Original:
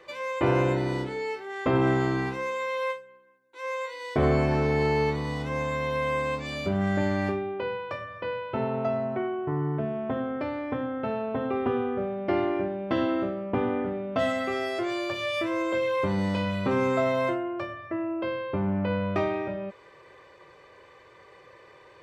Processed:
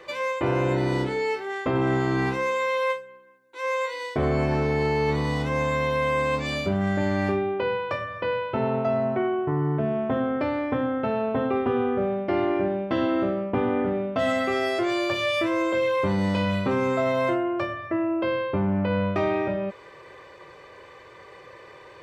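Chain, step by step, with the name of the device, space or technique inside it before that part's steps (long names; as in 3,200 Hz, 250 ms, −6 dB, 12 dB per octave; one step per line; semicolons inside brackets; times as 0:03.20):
compression on the reversed sound (reversed playback; downward compressor, threshold −26 dBFS, peak gain reduction 7.5 dB; reversed playback)
level +6 dB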